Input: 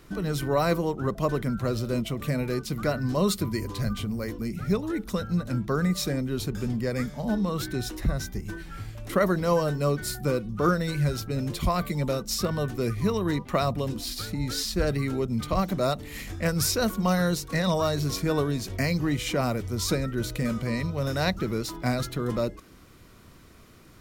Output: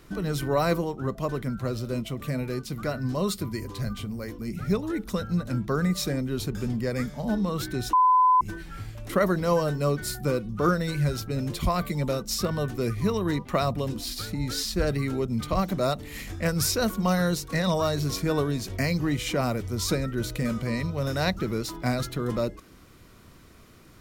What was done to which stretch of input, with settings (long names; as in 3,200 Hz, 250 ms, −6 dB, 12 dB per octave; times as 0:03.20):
0:00.84–0:04.48: tuned comb filter 130 Hz, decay 0.16 s, mix 40%
0:07.93–0:08.41: beep over 1,010 Hz −15.5 dBFS